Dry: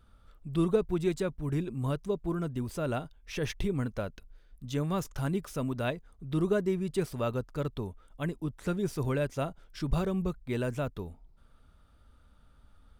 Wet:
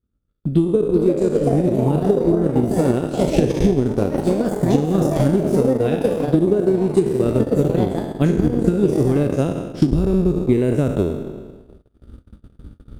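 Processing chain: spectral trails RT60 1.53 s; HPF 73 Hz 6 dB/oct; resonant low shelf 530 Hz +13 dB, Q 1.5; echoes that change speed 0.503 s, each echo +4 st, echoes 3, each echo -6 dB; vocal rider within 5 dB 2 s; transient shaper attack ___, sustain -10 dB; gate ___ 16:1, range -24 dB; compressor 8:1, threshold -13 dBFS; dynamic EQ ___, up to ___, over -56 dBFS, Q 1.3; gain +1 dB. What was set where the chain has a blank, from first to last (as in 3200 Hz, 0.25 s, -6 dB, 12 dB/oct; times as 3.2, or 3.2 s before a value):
+10 dB, -40 dBFS, 9000 Hz, +5 dB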